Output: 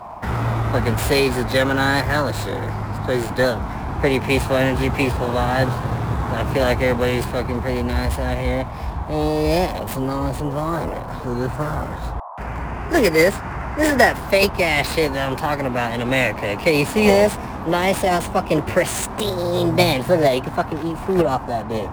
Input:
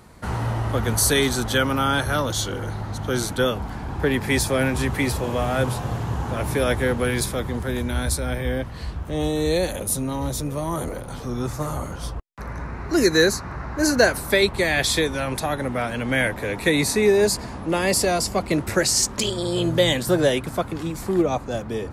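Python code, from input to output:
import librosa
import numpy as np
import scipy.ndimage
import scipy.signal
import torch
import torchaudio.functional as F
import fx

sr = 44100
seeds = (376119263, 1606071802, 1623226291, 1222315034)

y = scipy.signal.medfilt(x, 9)
y = fx.formant_shift(y, sr, semitones=3)
y = fx.dmg_noise_band(y, sr, seeds[0], low_hz=630.0, high_hz=1100.0, level_db=-39.0)
y = F.gain(torch.from_numpy(y), 3.5).numpy()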